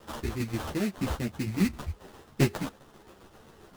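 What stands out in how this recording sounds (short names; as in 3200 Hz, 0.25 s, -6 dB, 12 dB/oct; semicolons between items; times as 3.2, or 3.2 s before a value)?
a quantiser's noise floor 10-bit, dither triangular; tremolo saw down 7.5 Hz, depth 55%; aliases and images of a low sample rate 2300 Hz, jitter 20%; a shimmering, thickened sound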